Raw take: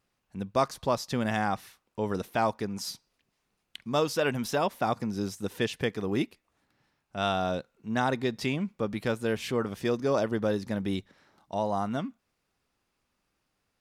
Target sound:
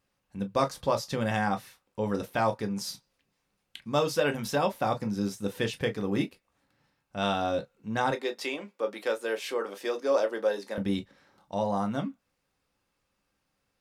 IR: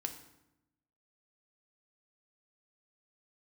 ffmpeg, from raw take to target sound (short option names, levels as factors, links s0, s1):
-filter_complex "[0:a]asettb=1/sr,asplit=3[s0][s1][s2];[s0]atrim=end=8.114[s3];[s1]atrim=start=8.11:end=10.78,asetpts=PTS-STARTPTS,afade=t=in:d=0.004:c=qsin,afade=t=out:st=2.666:d=0.004:c=qsin,highpass=f=340:w=0.5412,highpass=f=340:w=1.3066[s4];[s2]atrim=start=10.776[s5];[s3][s4]acrossfade=d=0.004:c1=hsin:c2=qsin[s6];[s6][s5]acrossfade=d=0.004:c1=qsin:c2=hsin[s7];[1:a]atrim=start_sample=2205,atrim=end_sample=3528,asetrate=79380,aresample=44100[s8];[s7][s8]afir=irnorm=-1:irlink=0,volume=2"